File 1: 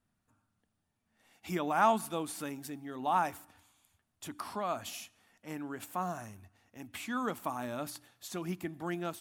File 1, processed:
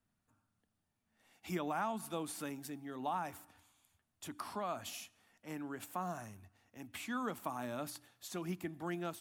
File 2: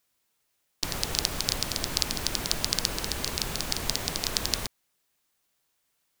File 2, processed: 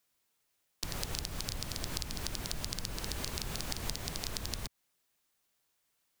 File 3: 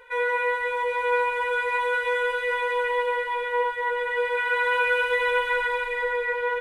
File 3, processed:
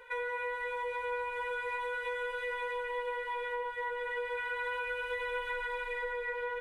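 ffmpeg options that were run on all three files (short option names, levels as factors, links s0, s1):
-filter_complex "[0:a]acrossover=split=180[s0][s1];[s1]acompressor=threshold=0.0282:ratio=6[s2];[s0][s2]amix=inputs=2:normalize=0,volume=0.708"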